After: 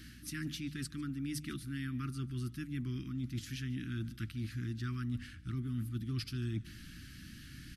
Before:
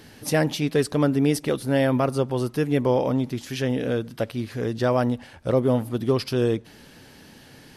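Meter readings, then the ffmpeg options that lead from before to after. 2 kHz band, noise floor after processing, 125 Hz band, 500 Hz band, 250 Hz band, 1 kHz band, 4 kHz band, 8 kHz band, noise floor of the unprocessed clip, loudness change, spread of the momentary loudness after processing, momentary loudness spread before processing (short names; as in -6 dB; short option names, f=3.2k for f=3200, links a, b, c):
-14.5 dB, -52 dBFS, -10.5 dB, -32.5 dB, -15.5 dB, -25.0 dB, -12.5 dB, -12.0 dB, -49 dBFS, -16.0 dB, 10 LU, 7 LU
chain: -af "asuperstop=centerf=650:order=12:qfactor=0.71,bandreject=f=50:t=h:w=6,bandreject=f=100:t=h:w=6,bandreject=f=150:t=h:w=6,areverse,acompressor=threshold=-35dB:ratio=4,areverse,asubboost=boost=2.5:cutoff=160,aecho=1:1:147:0.0891,aeval=exprs='val(0)+0.00282*(sin(2*PI*60*n/s)+sin(2*PI*2*60*n/s)/2+sin(2*PI*3*60*n/s)/3+sin(2*PI*4*60*n/s)/4+sin(2*PI*5*60*n/s)/5)':c=same,volume=-4dB"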